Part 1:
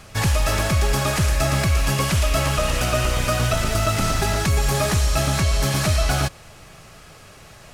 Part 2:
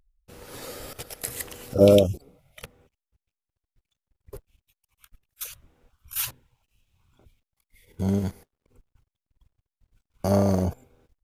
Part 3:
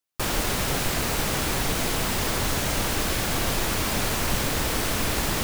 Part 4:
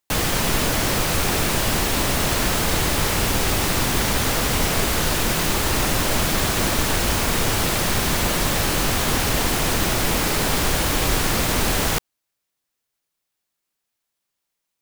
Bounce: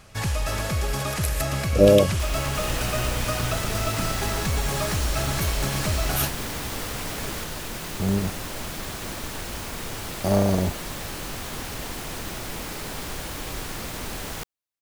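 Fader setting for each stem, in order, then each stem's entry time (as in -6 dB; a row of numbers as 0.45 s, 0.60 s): -6.5 dB, +0.5 dB, -9.5 dB, -12.5 dB; 0.00 s, 0.00 s, 2.00 s, 2.45 s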